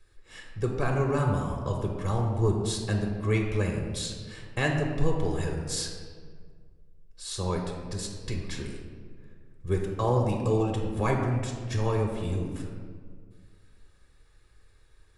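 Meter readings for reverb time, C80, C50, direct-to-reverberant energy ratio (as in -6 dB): 1.9 s, 5.0 dB, 3.5 dB, 1.0 dB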